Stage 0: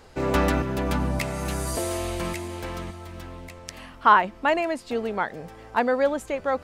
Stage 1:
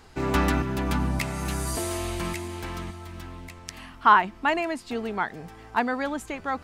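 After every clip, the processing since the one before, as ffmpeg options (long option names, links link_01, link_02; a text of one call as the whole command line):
ffmpeg -i in.wav -af "equalizer=frequency=540:width_type=o:width=0.36:gain=-12.5" out.wav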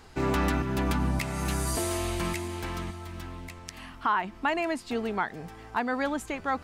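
ffmpeg -i in.wav -af "alimiter=limit=-16dB:level=0:latency=1:release=200" out.wav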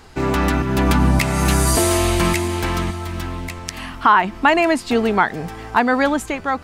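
ffmpeg -i in.wav -af "dynaudnorm=framelen=320:gausssize=5:maxgain=6dB,volume=7dB" out.wav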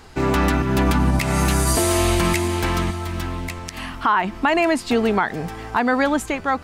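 ffmpeg -i in.wav -af "alimiter=limit=-8.5dB:level=0:latency=1:release=95" out.wav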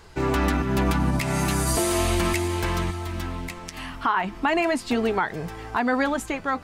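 ffmpeg -i in.wav -af "flanger=delay=1.9:depth=5.3:regen=-59:speed=0.37:shape=sinusoidal" out.wav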